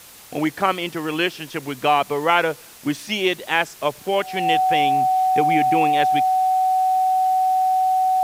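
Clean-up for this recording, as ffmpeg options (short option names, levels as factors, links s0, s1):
-af "adeclick=t=4,bandreject=f=750:w=30,afftdn=nr=24:nf=-42"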